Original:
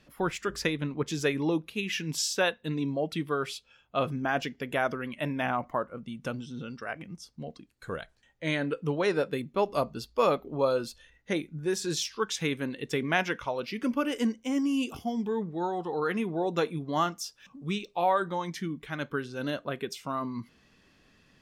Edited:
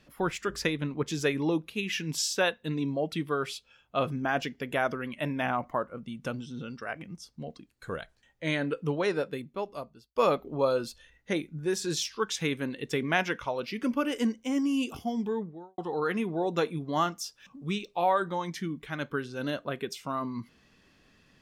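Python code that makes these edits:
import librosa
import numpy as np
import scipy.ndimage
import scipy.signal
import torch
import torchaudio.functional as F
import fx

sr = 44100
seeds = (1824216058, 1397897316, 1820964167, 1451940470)

y = fx.studio_fade_out(x, sr, start_s=15.24, length_s=0.54)
y = fx.edit(y, sr, fx.fade_out_span(start_s=8.89, length_s=1.27), tone=tone)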